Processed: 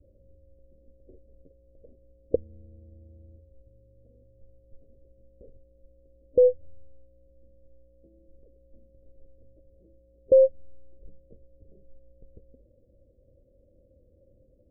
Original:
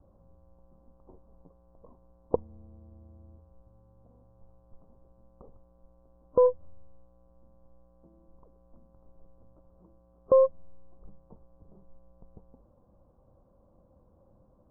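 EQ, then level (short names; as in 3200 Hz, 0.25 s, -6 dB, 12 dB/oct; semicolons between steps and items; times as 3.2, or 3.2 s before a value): elliptic low-pass 560 Hz, stop band 40 dB; bell 180 Hz -11 dB 0.8 oct; +4.0 dB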